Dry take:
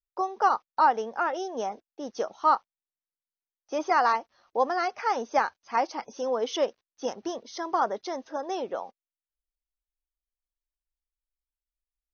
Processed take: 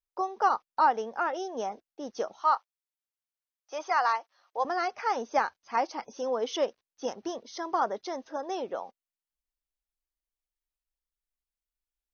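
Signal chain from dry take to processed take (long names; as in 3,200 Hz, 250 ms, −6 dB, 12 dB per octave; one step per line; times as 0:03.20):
0:02.43–0:04.65: high-pass filter 660 Hz 12 dB per octave
level −2 dB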